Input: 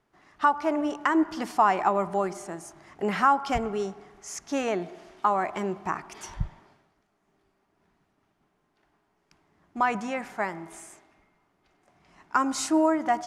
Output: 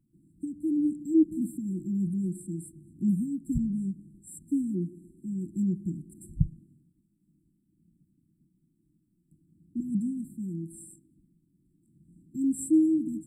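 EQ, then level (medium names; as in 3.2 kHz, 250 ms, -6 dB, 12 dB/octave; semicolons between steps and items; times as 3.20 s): brick-wall FIR band-stop 360–7400 Hz; peaking EQ 160 Hz +10 dB 1.1 oct; 0.0 dB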